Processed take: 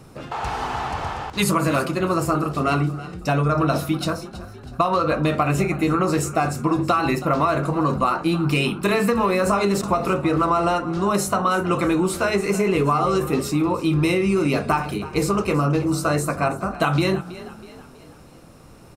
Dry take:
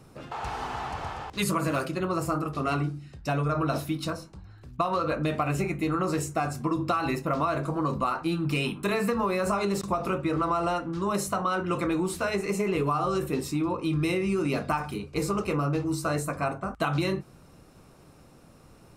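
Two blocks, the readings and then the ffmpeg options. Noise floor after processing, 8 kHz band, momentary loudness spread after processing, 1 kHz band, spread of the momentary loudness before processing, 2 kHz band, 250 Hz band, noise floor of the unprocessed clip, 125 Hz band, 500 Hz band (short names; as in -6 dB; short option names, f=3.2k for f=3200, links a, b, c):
-45 dBFS, +7.0 dB, 7 LU, +7.0 dB, 7 LU, +7.0 dB, +7.0 dB, -54 dBFS, +7.0 dB, +7.0 dB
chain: -filter_complex "[0:a]asplit=5[a][b][c][d][e];[b]adelay=323,afreqshift=35,volume=-16.5dB[f];[c]adelay=646,afreqshift=70,volume=-23.1dB[g];[d]adelay=969,afreqshift=105,volume=-29.6dB[h];[e]adelay=1292,afreqshift=140,volume=-36.2dB[i];[a][f][g][h][i]amix=inputs=5:normalize=0,volume=7dB"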